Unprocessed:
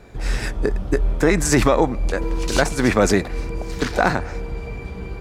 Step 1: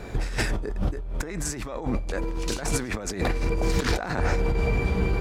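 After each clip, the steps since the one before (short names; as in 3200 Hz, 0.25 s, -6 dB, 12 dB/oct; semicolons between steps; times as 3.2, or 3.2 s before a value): negative-ratio compressor -28 dBFS, ratio -1; gain +1 dB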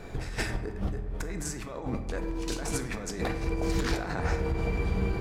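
dark delay 97 ms, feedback 80%, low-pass 1600 Hz, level -16 dB; on a send at -8 dB: reverb RT60 0.70 s, pre-delay 3 ms; on the sum: gain -5.5 dB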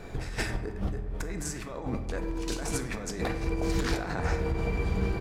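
echo 1.166 s -18.5 dB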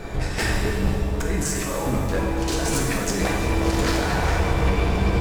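hard clip -28 dBFS, distortion -10 dB; shimmer reverb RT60 1.7 s, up +7 st, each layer -8 dB, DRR 0.5 dB; gain +8.5 dB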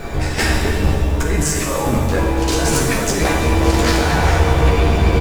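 requantised 10-bit, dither triangular; doubler 13 ms -5.5 dB; gain +5.5 dB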